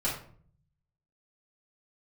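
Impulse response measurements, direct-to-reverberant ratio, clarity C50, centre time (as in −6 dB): −8.0 dB, 4.5 dB, 33 ms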